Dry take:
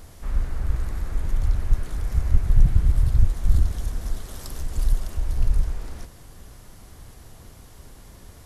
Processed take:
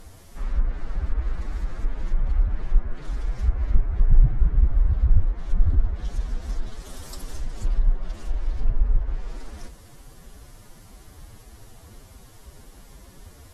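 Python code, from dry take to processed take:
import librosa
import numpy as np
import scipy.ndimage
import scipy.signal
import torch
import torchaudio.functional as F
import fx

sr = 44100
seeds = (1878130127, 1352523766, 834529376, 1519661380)

y = fx.stretch_vocoder(x, sr, factor=1.6)
y = fx.env_lowpass_down(y, sr, base_hz=1700.0, full_db=-15.0)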